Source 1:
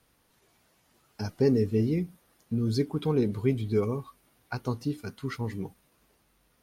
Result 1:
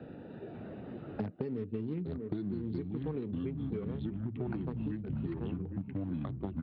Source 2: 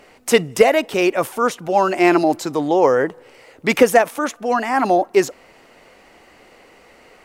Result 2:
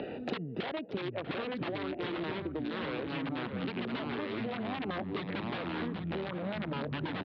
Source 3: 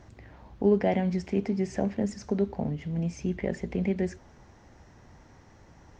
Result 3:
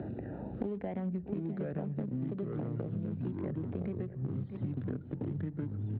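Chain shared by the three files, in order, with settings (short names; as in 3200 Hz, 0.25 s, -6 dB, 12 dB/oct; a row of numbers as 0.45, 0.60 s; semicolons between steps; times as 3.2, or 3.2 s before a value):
Wiener smoothing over 41 samples; wrapped overs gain 10.5 dB; HPF 170 Hz 12 dB/oct; outdoor echo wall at 110 m, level -19 dB; limiter -14.5 dBFS; echoes that change speed 0.548 s, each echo -4 st, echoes 3; compressor 4:1, threshold -34 dBFS; steep low-pass 3900 Hz 48 dB/oct; low shelf 360 Hz +3.5 dB; three-band squash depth 100%; gain -3 dB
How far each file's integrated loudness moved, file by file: -8.5, -19.0, -8.5 LU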